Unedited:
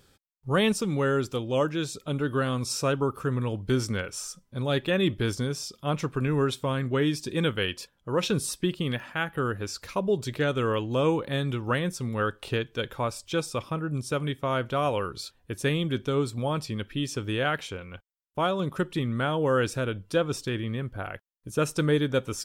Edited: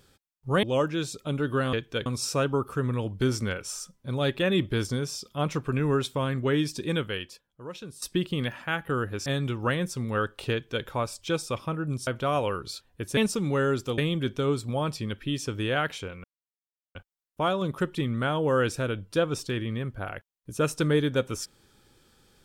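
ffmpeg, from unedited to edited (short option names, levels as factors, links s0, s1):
-filter_complex "[0:a]asplit=10[s0][s1][s2][s3][s4][s5][s6][s7][s8][s9];[s0]atrim=end=0.632[s10];[s1]atrim=start=1.438:end=2.542[s11];[s2]atrim=start=12.558:end=12.892[s12];[s3]atrim=start=2.538:end=8.5,asetpts=PTS-STARTPTS,afade=t=out:st=4.742:d=1.22:c=qua:silence=0.158489[s13];[s4]atrim=start=8.5:end=9.742,asetpts=PTS-STARTPTS,afade=t=in:d=0.004:c=hsin:silence=0.158489[s14];[s5]atrim=start=11.298:end=14.112[s15];[s6]atrim=start=14.568:end=15.672[s16];[s7]atrim=start=0.628:end=1.442[s17];[s8]atrim=start=15.668:end=17.93,asetpts=PTS-STARTPTS,afade=t=out:st=2.258:d=0.004:c=hsin,apad=pad_dur=0.71[s18];[s9]atrim=start=17.93,asetpts=PTS-STARTPTS,afade=t=in:d=0.004:c=hsin[s19];[s10][s11]acrossfade=d=0.004:c1=hsin:c2=hsin[s20];[s20][s12]acrossfade=d=0.004:c1=hsin:c2=hsin[s21];[s13][s14]concat=n=2:v=0:a=1[s22];[s21][s22]acrossfade=d=0.004:c1=hsin:c2=hsin[s23];[s23][s15]acrossfade=d=0.004:c1=hsin:c2=hsin[s24];[s24][s16]acrossfade=d=0.004:c1=hsin:c2=hsin[s25];[s25][s17]acrossfade=d=0.004:c1=hsin:c2=hsin[s26];[s18][s19]concat=n=2:v=0:a=1[s27];[s26][s27]acrossfade=d=0.004:c1=hsin:c2=hsin"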